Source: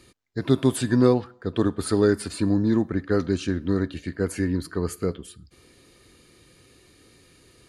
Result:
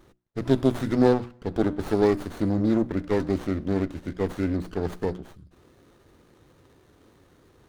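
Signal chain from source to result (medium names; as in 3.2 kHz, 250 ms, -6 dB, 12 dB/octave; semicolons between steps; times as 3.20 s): hum notches 60/120/180/240/300/360 Hz; sliding maximum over 17 samples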